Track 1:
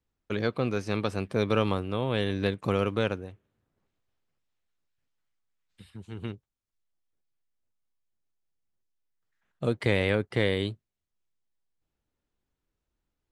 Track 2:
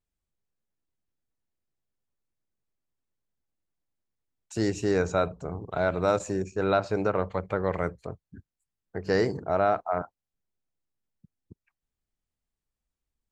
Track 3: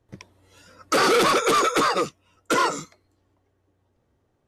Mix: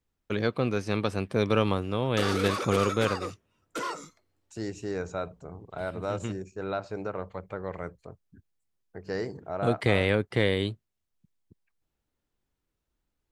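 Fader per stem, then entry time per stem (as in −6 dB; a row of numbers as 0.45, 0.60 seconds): +1.0, −8.0, −12.5 decibels; 0.00, 0.00, 1.25 seconds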